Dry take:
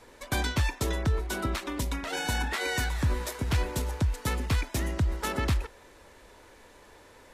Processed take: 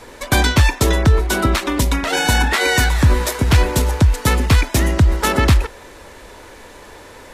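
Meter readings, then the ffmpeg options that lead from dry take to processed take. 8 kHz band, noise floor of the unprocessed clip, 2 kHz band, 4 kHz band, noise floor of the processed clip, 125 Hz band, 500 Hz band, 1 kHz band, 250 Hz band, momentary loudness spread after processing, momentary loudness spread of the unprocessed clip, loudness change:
+14.0 dB, -54 dBFS, +14.0 dB, +14.0 dB, -40 dBFS, +14.0 dB, +14.0 dB, +14.0 dB, +14.0 dB, 4 LU, 4 LU, +14.0 dB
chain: -af "acontrast=70,volume=7.5dB"

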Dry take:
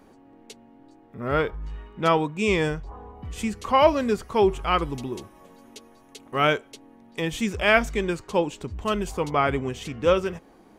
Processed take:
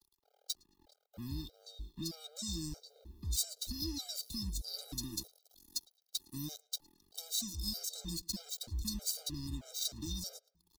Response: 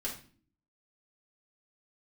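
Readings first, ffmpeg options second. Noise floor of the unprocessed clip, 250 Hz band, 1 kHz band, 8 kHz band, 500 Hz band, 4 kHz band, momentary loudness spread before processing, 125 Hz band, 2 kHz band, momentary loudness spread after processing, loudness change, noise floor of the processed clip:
-54 dBFS, -16.5 dB, -37.5 dB, +3.5 dB, -34.5 dB, -5.0 dB, 15 LU, -12.0 dB, -38.0 dB, 12 LU, -15.5 dB, -80 dBFS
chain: -filter_complex "[0:a]afftfilt=real='re*(1-between(b*sr/4096,340,3600))':imag='im*(1-between(b*sr/4096,340,3600))':win_size=4096:overlap=0.75,acompressor=threshold=-31dB:ratio=8,lowshelf=f=61:g=-4.5,aeval=exprs='sgn(val(0))*max(abs(val(0))-0.00316,0)':c=same,alimiter=level_in=4.5dB:limit=-24dB:level=0:latency=1:release=447,volume=-4.5dB,equalizer=f=125:t=o:w=1:g=-11,equalizer=f=250:t=o:w=1:g=-11,equalizer=f=1k:t=o:w=1:g=-6,equalizer=f=2k:t=o:w=1:g=-9,equalizer=f=4k:t=o:w=1:g=7,equalizer=f=8k:t=o:w=1:g=-7,asplit=2[a][b];[b]adelay=109,lowpass=f=3.6k:p=1,volume=-24dB,asplit=2[c][d];[d]adelay=109,lowpass=f=3.6k:p=1,volume=0.46,asplit=2[e][f];[f]adelay=109,lowpass=f=3.6k:p=1,volume=0.46[g];[a][c][e][g]amix=inputs=4:normalize=0,acrossover=split=130|3000[h][i][j];[i]acompressor=threshold=-45dB:ratio=6[k];[h][k][j]amix=inputs=3:normalize=0,crystalizer=i=2.5:c=0,afftfilt=real='re*gt(sin(2*PI*1.6*pts/sr)*(1-2*mod(floor(b*sr/1024/410),2)),0)':imag='im*gt(sin(2*PI*1.6*pts/sr)*(1-2*mod(floor(b*sr/1024/410),2)),0)':win_size=1024:overlap=0.75,volume=7dB"

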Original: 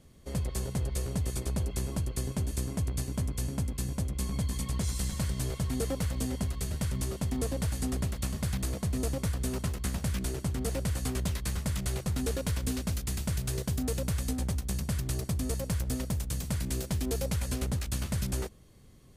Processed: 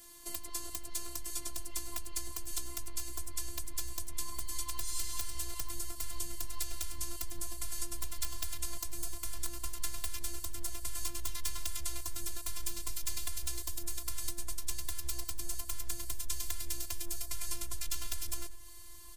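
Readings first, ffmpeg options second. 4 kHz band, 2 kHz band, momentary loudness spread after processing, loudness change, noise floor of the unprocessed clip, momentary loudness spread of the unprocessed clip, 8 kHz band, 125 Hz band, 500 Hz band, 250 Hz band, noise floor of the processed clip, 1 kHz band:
-1.0 dB, -5.5 dB, 2 LU, -6.5 dB, -49 dBFS, 2 LU, +1.0 dB, -19.0 dB, -16.5 dB, -19.5 dB, -44 dBFS, -5.0 dB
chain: -filter_complex "[0:a]highpass=41,acompressor=threshold=-35dB:ratio=2.5,aresample=32000,aresample=44100,bandreject=f=60:t=h:w=6,bandreject=f=120:t=h:w=6,bandreject=f=180:t=h:w=6,bandreject=f=240:t=h:w=6,aeval=exprs='(mod(20*val(0)+1,2)-1)/20':c=same,asplit=2[a][b];[b]aecho=0:1:90:0.1[c];[a][c]amix=inputs=2:normalize=0,acrossover=split=140|5900[d][e][f];[d]acompressor=threshold=-43dB:ratio=4[g];[e]acompressor=threshold=-48dB:ratio=4[h];[f]acompressor=threshold=-59dB:ratio=4[i];[g][h][i]amix=inputs=3:normalize=0,equalizer=f=1.1k:w=7:g=10.5,aeval=exprs='val(0)+0.000355*sin(2*PI*1600*n/s)':c=same,afftfilt=real='hypot(re,im)*cos(PI*b)':imag='0':win_size=512:overlap=0.75,asubboost=boost=5.5:cutoff=100,crystalizer=i=7:c=0,volume=1dB"

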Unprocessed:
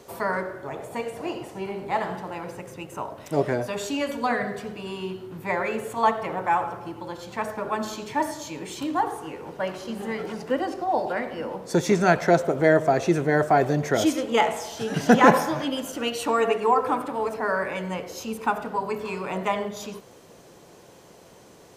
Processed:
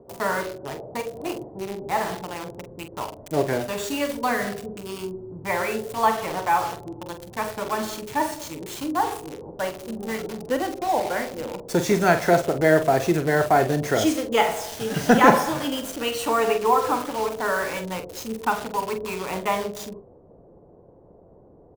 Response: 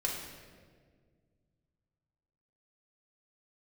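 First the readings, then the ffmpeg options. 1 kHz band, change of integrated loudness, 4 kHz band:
+1.0 dB, +1.0 dB, +2.5 dB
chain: -filter_complex "[0:a]asubboost=boost=2.5:cutoff=87,acrossover=split=800[a][b];[b]acrusher=bits=5:mix=0:aa=0.000001[c];[a][c]amix=inputs=2:normalize=0,asplit=2[d][e];[e]adelay=45,volume=-9dB[f];[d][f]amix=inputs=2:normalize=0,volume=1dB"

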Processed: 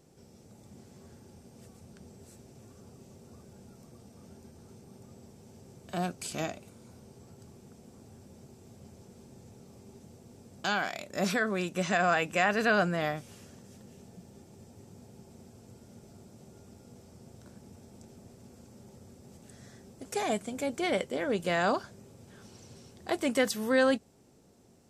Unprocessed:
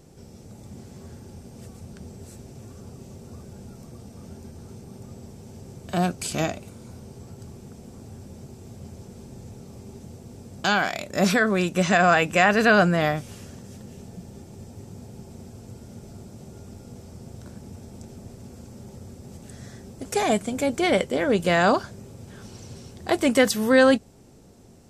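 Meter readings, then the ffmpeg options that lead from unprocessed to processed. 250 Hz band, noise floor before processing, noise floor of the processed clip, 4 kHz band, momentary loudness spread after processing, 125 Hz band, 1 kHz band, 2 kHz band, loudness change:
-9.5 dB, -47 dBFS, -57 dBFS, -8.0 dB, 11 LU, -10.5 dB, -8.0 dB, -8.0 dB, -8.5 dB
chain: -af "lowshelf=f=94:g=-10,volume=-8dB"

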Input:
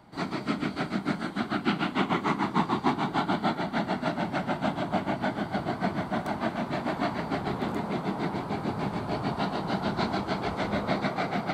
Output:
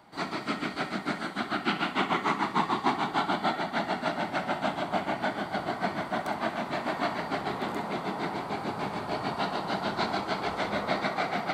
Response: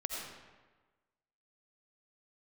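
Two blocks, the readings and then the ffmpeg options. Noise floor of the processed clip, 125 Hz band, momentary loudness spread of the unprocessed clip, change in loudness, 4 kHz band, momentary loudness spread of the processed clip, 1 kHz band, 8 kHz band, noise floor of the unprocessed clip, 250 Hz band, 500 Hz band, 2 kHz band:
-39 dBFS, -6.5 dB, 4 LU, -1.0 dB, +2.0 dB, 5 LU, +1.0 dB, n/a, -39 dBFS, -4.5 dB, -0.5 dB, +2.0 dB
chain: -filter_complex "[0:a]lowshelf=f=280:g=-11.5[a];[1:a]atrim=start_sample=2205,atrim=end_sample=3087[b];[a][b]afir=irnorm=-1:irlink=0,volume=3.5dB"

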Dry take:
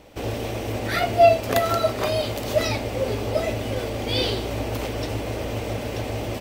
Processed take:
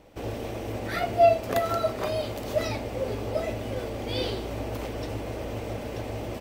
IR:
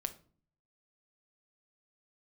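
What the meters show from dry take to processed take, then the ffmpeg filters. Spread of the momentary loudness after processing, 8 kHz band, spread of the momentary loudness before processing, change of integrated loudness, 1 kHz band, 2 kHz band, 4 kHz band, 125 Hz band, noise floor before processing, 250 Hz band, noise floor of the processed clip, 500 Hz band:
13 LU, -8.5 dB, 12 LU, -5.0 dB, -4.5 dB, -7.0 dB, -8.5 dB, -6.0 dB, -31 dBFS, -4.5 dB, -36 dBFS, -4.5 dB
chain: -filter_complex "[0:a]asplit=2[a][b];[1:a]atrim=start_sample=2205,lowpass=2.3k[c];[b][c]afir=irnorm=-1:irlink=0,volume=-6dB[d];[a][d]amix=inputs=2:normalize=0,volume=-8dB"

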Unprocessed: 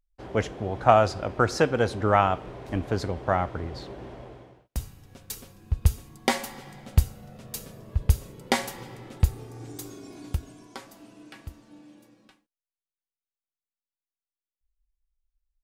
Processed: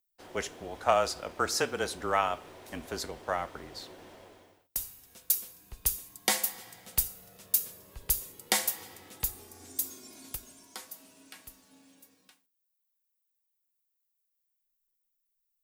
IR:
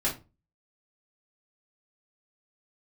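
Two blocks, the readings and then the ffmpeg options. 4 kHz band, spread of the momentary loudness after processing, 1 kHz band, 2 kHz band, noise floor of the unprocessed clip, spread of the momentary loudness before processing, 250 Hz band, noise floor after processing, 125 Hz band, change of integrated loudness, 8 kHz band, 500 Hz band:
+1.0 dB, 19 LU, -7.0 dB, -4.0 dB, under -85 dBFS, 22 LU, -12.0 dB, -80 dBFS, -20.5 dB, -4.5 dB, +7.0 dB, -8.0 dB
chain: -filter_complex "[0:a]aemphasis=mode=production:type=riaa,afreqshift=-28,asplit=2[a][b];[1:a]atrim=start_sample=2205[c];[b][c]afir=irnorm=-1:irlink=0,volume=-24dB[d];[a][d]amix=inputs=2:normalize=0,volume=-6.5dB"

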